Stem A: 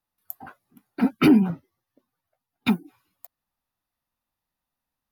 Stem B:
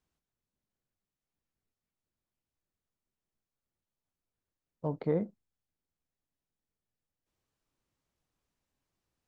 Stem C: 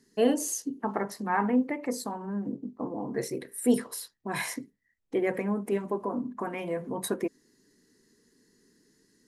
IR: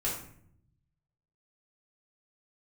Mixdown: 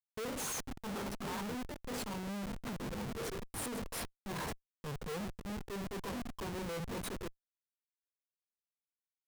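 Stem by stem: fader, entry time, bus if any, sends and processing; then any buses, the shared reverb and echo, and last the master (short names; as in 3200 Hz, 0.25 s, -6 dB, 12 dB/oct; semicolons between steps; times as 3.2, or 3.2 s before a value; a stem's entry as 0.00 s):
-19.5 dB, 0.00 s, no send, inverse Chebyshev low-pass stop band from 5200 Hz; low shelf 440 Hz +7.5 dB; spectral compressor 2:1
+1.5 dB, 0.00 s, no send, dry
-5.5 dB, 0.00 s, no send, auto duck -14 dB, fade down 0.55 s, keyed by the second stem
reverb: off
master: fixed phaser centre 450 Hz, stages 8; Schmitt trigger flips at -44 dBFS; limiter -38 dBFS, peak gain reduction 5.5 dB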